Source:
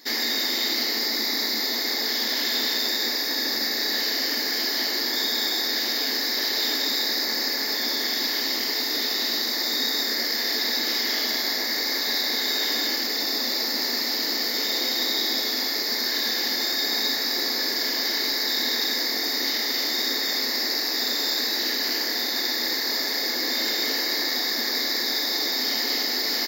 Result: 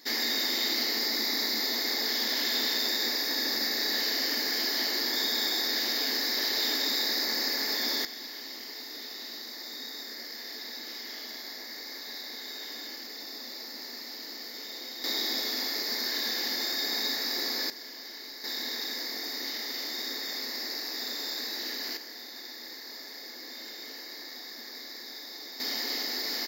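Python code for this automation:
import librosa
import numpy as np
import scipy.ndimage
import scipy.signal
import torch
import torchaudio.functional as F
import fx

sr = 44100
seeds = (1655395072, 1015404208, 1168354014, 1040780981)

y = fx.gain(x, sr, db=fx.steps((0.0, -4.0), (8.05, -15.5), (15.04, -6.0), (17.7, -18.0), (18.44, -10.0), (21.97, -17.5), (25.6, -7.5)))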